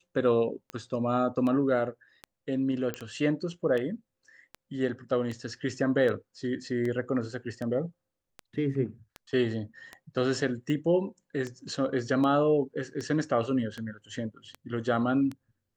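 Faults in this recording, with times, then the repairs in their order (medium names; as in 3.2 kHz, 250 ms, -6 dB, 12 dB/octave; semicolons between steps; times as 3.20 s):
tick 78 rpm -23 dBFS
2.94 s: pop -18 dBFS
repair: de-click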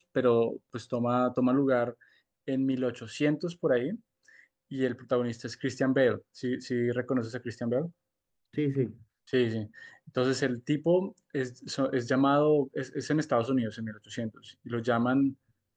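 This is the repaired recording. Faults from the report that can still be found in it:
nothing left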